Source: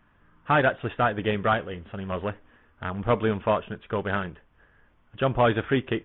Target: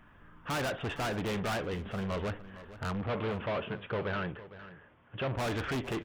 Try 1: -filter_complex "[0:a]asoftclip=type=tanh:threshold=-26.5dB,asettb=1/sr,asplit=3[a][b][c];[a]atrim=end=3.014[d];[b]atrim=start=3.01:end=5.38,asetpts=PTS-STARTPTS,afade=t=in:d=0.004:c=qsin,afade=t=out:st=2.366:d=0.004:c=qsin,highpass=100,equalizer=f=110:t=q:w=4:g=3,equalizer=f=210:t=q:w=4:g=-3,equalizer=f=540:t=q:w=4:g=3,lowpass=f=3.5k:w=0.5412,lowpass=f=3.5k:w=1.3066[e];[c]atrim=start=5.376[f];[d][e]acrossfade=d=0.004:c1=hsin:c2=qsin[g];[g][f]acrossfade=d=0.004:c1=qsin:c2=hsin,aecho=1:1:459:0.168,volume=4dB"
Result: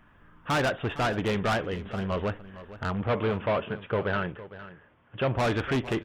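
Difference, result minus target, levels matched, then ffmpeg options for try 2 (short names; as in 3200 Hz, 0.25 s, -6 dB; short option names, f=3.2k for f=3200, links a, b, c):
soft clip: distortion -4 dB
-filter_complex "[0:a]asoftclip=type=tanh:threshold=-35dB,asettb=1/sr,asplit=3[a][b][c];[a]atrim=end=3.014[d];[b]atrim=start=3.01:end=5.38,asetpts=PTS-STARTPTS,afade=t=in:d=0.004:c=qsin,afade=t=out:st=2.366:d=0.004:c=qsin,highpass=100,equalizer=f=110:t=q:w=4:g=3,equalizer=f=210:t=q:w=4:g=-3,equalizer=f=540:t=q:w=4:g=3,lowpass=f=3.5k:w=0.5412,lowpass=f=3.5k:w=1.3066[e];[c]atrim=start=5.376[f];[d][e]acrossfade=d=0.004:c1=hsin:c2=qsin[g];[g][f]acrossfade=d=0.004:c1=qsin:c2=hsin,aecho=1:1:459:0.168,volume=4dB"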